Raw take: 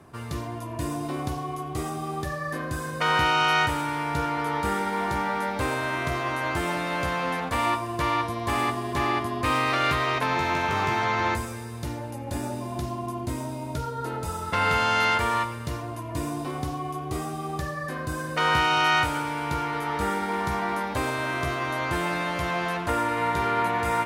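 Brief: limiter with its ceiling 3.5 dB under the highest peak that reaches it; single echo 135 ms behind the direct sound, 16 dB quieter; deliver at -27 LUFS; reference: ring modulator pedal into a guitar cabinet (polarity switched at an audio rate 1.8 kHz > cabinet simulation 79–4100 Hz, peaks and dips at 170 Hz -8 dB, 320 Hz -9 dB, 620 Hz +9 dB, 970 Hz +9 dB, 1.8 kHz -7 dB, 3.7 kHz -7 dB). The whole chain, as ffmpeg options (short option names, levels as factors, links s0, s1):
-af "alimiter=limit=0.168:level=0:latency=1,aecho=1:1:135:0.158,aeval=exprs='val(0)*sgn(sin(2*PI*1800*n/s))':c=same,highpass=79,equalizer=f=170:t=q:w=4:g=-8,equalizer=f=320:t=q:w=4:g=-9,equalizer=f=620:t=q:w=4:g=9,equalizer=f=970:t=q:w=4:g=9,equalizer=f=1800:t=q:w=4:g=-7,equalizer=f=3700:t=q:w=4:g=-7,lowpass=f=4100:w=0.5412,lowpass=f=4100:w=1.3066,volume=0.891"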